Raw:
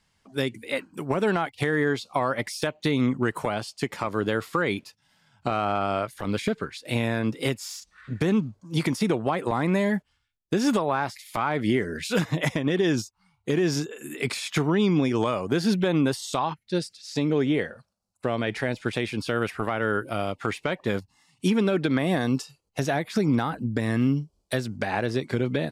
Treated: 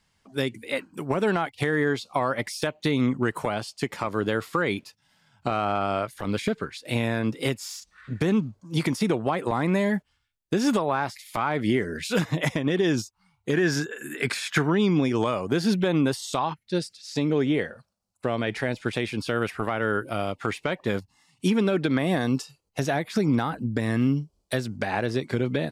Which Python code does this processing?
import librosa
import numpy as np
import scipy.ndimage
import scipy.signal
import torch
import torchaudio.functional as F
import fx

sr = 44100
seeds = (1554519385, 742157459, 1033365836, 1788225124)

y = fx.peak_eq(x, sr, hz=1600.0, db=12.5, octaves=0.41, at=(13.53, 14.73))